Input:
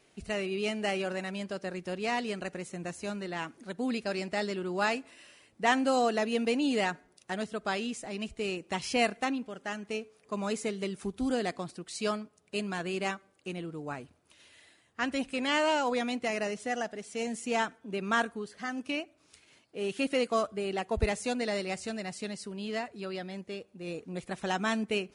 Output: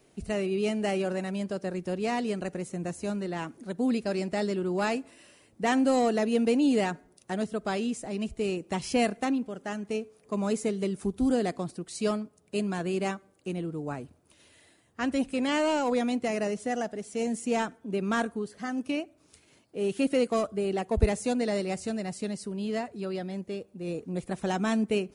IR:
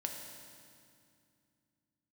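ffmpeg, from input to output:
-filter_complex "[0:a]equalizer=frequency=2600:width=0.33:gain=-9.5,acrossover=split=630|1200[link_01][link_02][link_03];[link_02]asoftclip=type=hard:threshold=-40dB[link_04];[link_01][link_04][link_03]amix=inputs=3:normalize=0,volume=6.5dB"

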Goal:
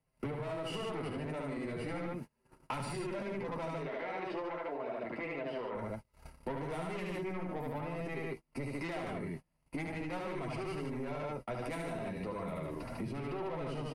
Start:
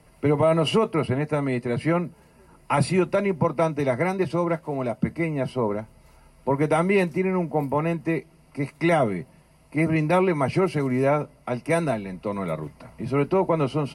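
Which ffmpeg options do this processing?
ffmpeg -i in.wav -filter_complex "[0:a]asoftclip=type=tanh:threshold=-21.5dB,asettb=1/sr,asplit=3[link_01][link_02][link_03];[link_01]atrim=end=3.754[link_04];[link_02]atrim=start=3.75:end=5.75,asetpts=PTS-STARTPTS,afade=type=in:duration=0.004:curve=qsin,afade=type=out:start_time=1.996:duration=0.004:curve=qsin,acrossover=split=310 4400:gain=0.112 1 0.0891[link_05][link_06][link_07];[link_05][link_06][link_07]amix=inputs=3:normalize=0[link_08];[link_03]atrim=start=5.746[link_09];[link_04][link_08]acrossfade=duration=0.004:curve1=hsin:curve2=qsin[link_10];[link_10][link_09]acrossfade=duration=0.004:curve1=qsin:curve2=hsin,aecho=1:1:72.89|148.7:0.794|0.631,alimiter=level_in=2dB:limit=-24dB:level=0:latency=1:release=49,volume=-2dB,flanger=delay=7.6:depth=4.5:regen=-33:speed=0.37:shape=sinusoidal,acompressor=threshold=-45dB:ratio=4,asubboost=boost=2.5:cutoff=55,agate=range=-31dB:threshold=-50dB:ratio=16:detection=peak,volume=7.5dB" out.wav

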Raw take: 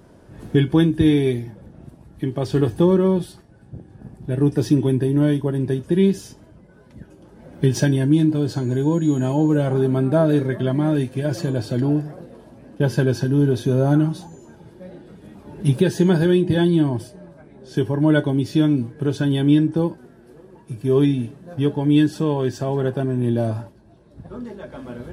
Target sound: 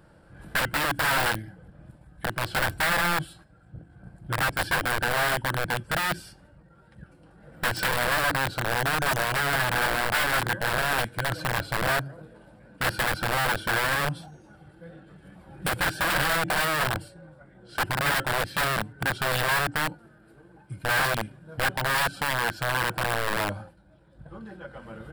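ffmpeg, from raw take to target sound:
ffmpeg -i in.wav -af "asetrate=40440,aresample=44100,atempo=1.09051,aeval=exprs='(mod(6.31*val(0)+1,2)-1)/6.31':channel_layout=same,equalizer=frequency=100:width_type=o:width=0.33:gain=-7,equalizer=frequency=250:width_type=o:width=0.33:gain=-12,equalizer=frequency=400:width_type=o:width=0.33:gain=-9,equalizer=frequency=1600:width_type=o:width=0.33:gain=9,equalizer=frequency=6300:width_type=o:width=0.33:gain=-11,volume=-4dB" out.wav

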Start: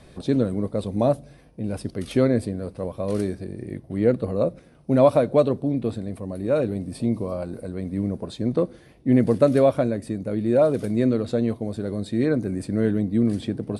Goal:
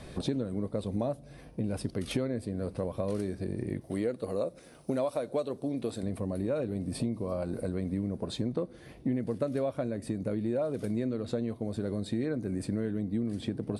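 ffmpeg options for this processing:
ffmpeg -i in.wav -filter_complex "[0:a]asettb=1/sr,asplit=3[link_01][link_02][link_03];[link_01]atrim=end=3.814[link_04];[link_02]atrim=start=3.81:end=6.03,asetpts=PTS-STARTPTS,afade=type=in:duration=0.004:curve=qsin,afade=type=out:start_time=2.216:duration=0.004:curve=qsin,bass=frequency=250:gain=-9,treble=frequency=4000:gain=9[link_05];[link_03]atrim=start=6.026[link_06];[link_04][link_05]acrossfade=duration=0.004:curve1=hsin:curve2=qsin[link_07];[link_07][link_06]acrossfade=duration=0.004:curve1=qsin:curve2=hsin,acompressor=threshold=-32dB:ratio=6,volume=3dB" out.wav

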